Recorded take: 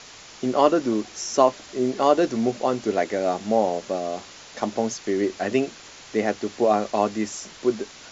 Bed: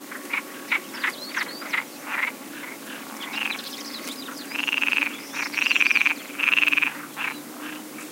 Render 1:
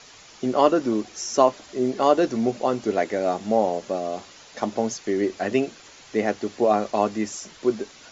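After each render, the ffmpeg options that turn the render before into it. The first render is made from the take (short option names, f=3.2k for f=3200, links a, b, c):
-af "afftdn=nr=6:nf=-45"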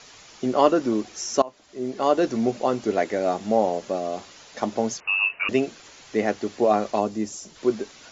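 -filter_complex "[0:a]asettb=1/sr,asplit=3[a][b][c];[a]atrim=end=5.004[d];[b]atrim=start=5:end=5.49,asetpts=PTS-STARTPTS,afade=t=in:d=0.004:c=qsin,afade=t=out:st=0.486:d=0.004:c=qsin,lowpass=f=2.6k:t=q:w=0.5098,lowpass=f=2.6k:t=q:w=0.6013,lowpass=f=2.6k:t=q:w=0.9,lowpass=f=2.6k:t=q:w=2.563,afreqshift=-3000[e];[c]atrim=start=5.486[f];[d][e]acrossfade=d=0.004:c1=hsin:c2=qsin[g];[g][f]acrossfade=d=0.004:c1=qsin:c2=hsin,asplit=3[h][i][j];[h]afade=t=out:st=6.99:d=0.02[k];[i]equalizer=f=1.8k:t=o:w=2.3:g=-9.5,afade=t=in:st=6.99:d=0.02,afade=t=out:st=7.55:d=0.02[l];[j]afade=t=in:st=7.55:d=0.02[m];[k][l][m]amix=inputs=3:normalize=0,asplit=2[n][o];[n]atrim=end=1.42,asetpts=PTS-STARTPTS,afade=t=out:st=1.416:d=0.004:c=hsin:silence=0.0630957[p];[o]atrim=start=1.42,asetpts=PTS-STARTPTS,afade=t=in:d=0.89:silence=0.0630957[q];[p][q]concat=n=2:v=0:a=1"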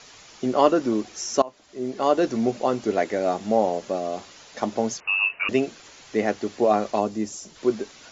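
-af anull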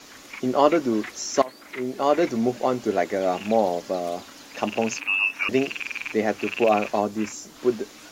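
-filter_complex "[1:a]volume=-12.5dB[a];[0:a][a]amix=inputs=2:normalize=0"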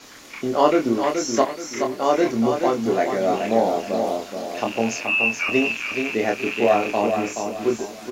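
-filter_complex "[0:a]asplit=2[a][b];[b]adelay=26,volume=-3.5dB[c];[a][c]amix=inputs=2:normalize=0,aecho=1:1:426|852|1278|1704:0.501|0.165|0.0546|0.018"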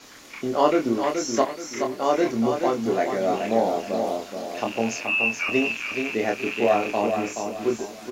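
-af "volume=-2.5dB"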